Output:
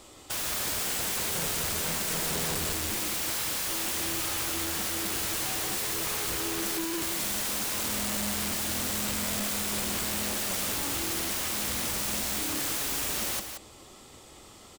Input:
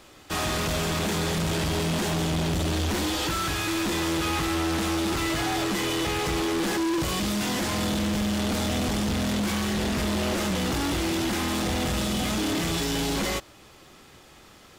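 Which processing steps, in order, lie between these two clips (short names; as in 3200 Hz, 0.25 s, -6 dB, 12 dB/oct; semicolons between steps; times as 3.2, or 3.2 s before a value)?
thirty-one-band EQ 160 Hz -7 dB, 1600 Hz -10 dB, 2500 Hz -4 dB, 8000 Hz +9 dB; wrapped overs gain 27.5 dB; on a send: echo 0.178 s -7.5 dB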